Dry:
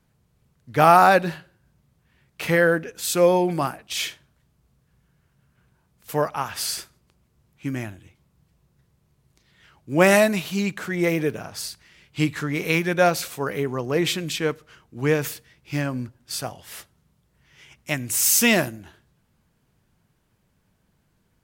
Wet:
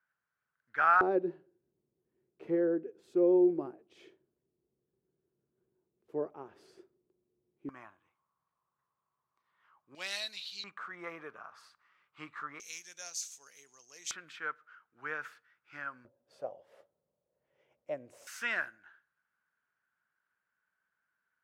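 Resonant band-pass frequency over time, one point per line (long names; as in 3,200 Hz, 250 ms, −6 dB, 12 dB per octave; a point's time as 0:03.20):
resonant band-pass, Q 6.4
1,500 Hz
from 0:01.01 370 Hz
from 0:07.69 1,100 Hz
from 0:09.95 4,100 Hz
from 0:10.64 1,200 Hz
from 0:12.60 6,400 Hz
from 0:14.11 1,400 Hz
from 0:16.05 550 Hz
from 0:18.27 1,500 Hz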